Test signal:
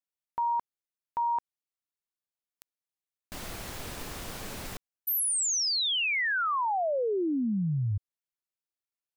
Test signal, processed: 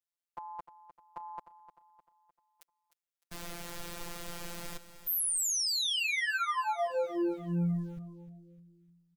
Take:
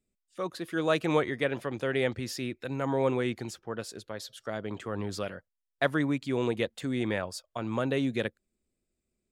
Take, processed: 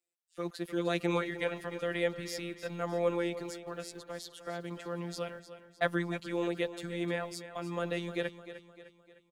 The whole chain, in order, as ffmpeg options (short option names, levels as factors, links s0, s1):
-filter_complex "[0:a]afftfilt=real='hypot(re,im)*cos(PI*b)':imag='0':win_size=1024:overlap=0.75,acrossover=split=360|4000[s0][s1][s2];[s0]aeval=exprs='val(0)*gte(abs(val(0)),0.0015)':c=same[s3];[s3][s1][s2]amix=inputs=3:normalize=0,aecho=1:1:304|608|912|1216|1520:0.224|0.105|0.0495|0.0232|0.0109"